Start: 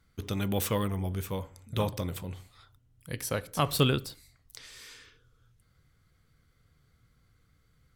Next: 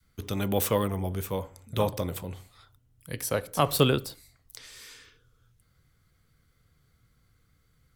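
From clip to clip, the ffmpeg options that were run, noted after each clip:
-filter_complex "[0:a]adynamicequalizer=threshold=0.00891:dfrequency=600:dqfactor=0.71:tfrequency=600:tqfactor=0.71:attack=5:release=100:ratio=0.375:range=3:mode=boostabove:tftype=bell,acrossover=split=300[s0][s1];[s1]crystalizer=i=0.5:c=0[s2];[s0][s2]amix=inputs=2:normalize=0"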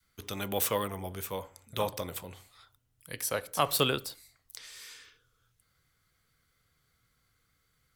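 -af "lowshelf=f=470:g=-11"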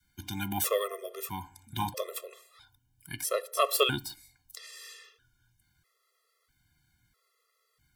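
-af "afftfilt=real='re*gt(sin(2*PI*0.77*pts/sr)*(1-2*mod(floor(b*sr/1024/350),2)),0)':imag='im*gt(sin(2*PI*0.77*pts/sr)*(1-2*mod(floor(b*sr/1024/350),2)),0)':win_size=1024:overlap=0.75,volume=1.5"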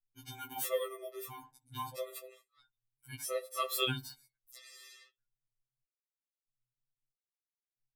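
-af "anlmdn=0.000398,afftfilt=real='re*2.45*eq(mod(b,6),0)':imag='im*2.45*eq(mod(b,6),0)':win_size=2048:overlap=0.75,volume=0.562"

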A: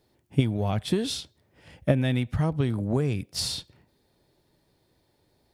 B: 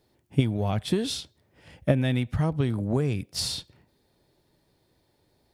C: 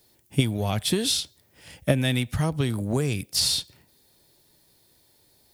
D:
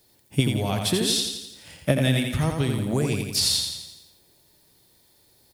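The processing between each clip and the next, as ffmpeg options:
-af anull
-filter_complex "[0:a]acrossover=split=500|4200[s0][s1][s2];[s2]alimiter=level_in=2.24:limit=0.0631:level=0:latency=1:release=213,volume=0.447[s3];[s0][s1][s3]amix=inputs=3:normalize=0,crystalizer=i=4.5:c=0"
-af "aecho=1:1:85|170|255|340|425|510|595:0.562|0.304|0.164|0.0885|0.0478|0.0258|0.0139"

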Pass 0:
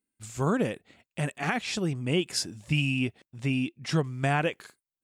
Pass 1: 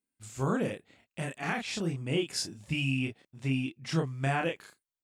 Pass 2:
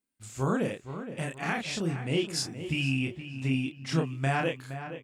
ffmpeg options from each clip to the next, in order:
-filter_complex "[0:a]asplit=2[s0][s1];[s1]adelay=30,volume=0.668[s2];[s0][s2]amix=inputs=2:normalize=0,volume=0.562"
-filter_complex "[0:a]asplit=2[s0][s1];[s1]adelay=468,lowpass=f=2600:p=1,volume=0.299,asplit=2[s2][s3];[s3]adelay=468,lowpass=f=2600:p=1,volume=0.36,asplit=2[s4][s5];[s5]adelay=468,lowpass=f=2600:p=1,volume=0.36,asplit=2[s6][s7];[s7]adelay=468,lowpass=f=2600:p=1,volume=0.36[s8];[s0][s2][s4][s6][s8]amix=inputs=5:normalize=0,volume=1.19"

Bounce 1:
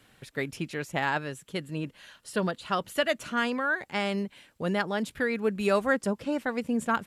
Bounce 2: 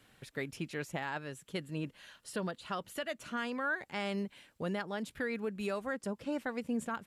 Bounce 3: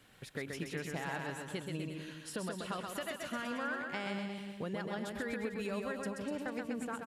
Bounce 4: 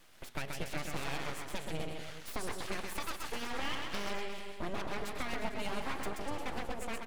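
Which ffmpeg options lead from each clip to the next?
-af "alimiter=limit=0.0794:level=0:latency=1:release=362,volume=0.631"
-filter_complex "[0:a]acompressor=threshold=0.0141:ratio=6,asplit=2[s0][s1];[s1]aecho=0:1:130|247|352.3|447.1|532.4:0.631|0.398|0.251|0.158|0.1[s2];[s0][s2]amix=inputs=2:normalize=0,volume=1.12"
-af "bandreject=f=118.6:t=h:w=4,bandreject=f=237.2:t=h:w=4,bandreject=f=355.8:t=h:w=4,bandreject=f=474.4:t=h:w=4,bandreject=f=593:t=h:w=4,bandreject=f=711.6:t=h:w=4,bandreject=f=830.2:t=h:w=4,bandreject=f=948.8:t=h:w=4,bandreject=f=1067.4:t=h:w=4,bandreject=f=1186:t=h:w=4,bandreject=f=1304.6:t=h:w=4,bandreject=f=1423.2:t=h:w=4,bandreject=f=1541.8:t=h:w=4,bandreject=f=1660.4:t=h:w=4,bandreject=f=1779:t=h:w=4,bandreject=f=1897.6:t=h:w=4,bandreject=f=2016.2:t=h:w=4,bandreject=f=2134.8:t=h:w=4,bandreject=f=2253.4:t=h:w=4,bandreject=f=2372:t=h:w=4,bandreject=f=2490.6:t=h:w=4,bandreject=f=2609.2:t=h:w=4,bandreject=f=2727.8:t=h:w=4,bandreject=f=2846.4:t=h:w=4,bandreject=f=2965:t=h:w=4,bandreject=f=3083.6:t=h:w=4,bandreject=f=3202.2:t=h:w=4,bandreject=f=3320.8:t=h:w=4,bandreject=f=3439.4:t=h:w=4,bandreject=f=3558:t=h:w=4,bandreject=f=3676.6:t=h:w=4,bandreject=f=3795.2:t=h:w=4,bandreject=f=3913.8:t=h:w=4,bandreject=f=4032.4:t=h:w=4,bandreject=f=4151:t=h:w=4,bandreject=f=4269.6:t=h:w=4,bandreject=f=4388.2:t=h:w=4,aeval=exprs='abs(val(0))':c=same,volume=1.58"

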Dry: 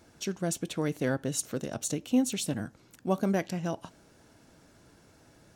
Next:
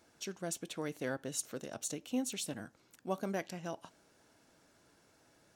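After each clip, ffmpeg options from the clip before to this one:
-af "lowshelf=f=240:g=-10.5,volume=0.531"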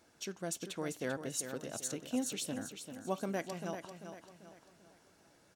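-af "aecho=1:1:392|784|1176|1568|1960:0.376|0.154|0.0632|0.0259|0.0106"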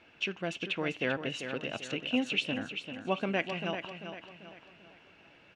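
-af "lowpass=f=2700:t=q:w=6.1,volume=1.68"

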